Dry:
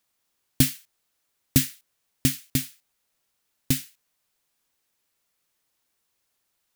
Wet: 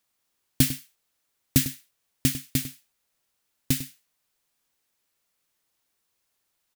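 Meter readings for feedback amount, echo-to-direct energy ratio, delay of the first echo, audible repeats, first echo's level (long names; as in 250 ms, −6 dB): repeats not evenly spaced, −13.5 dB, 100 ms, 1, −13.5 dB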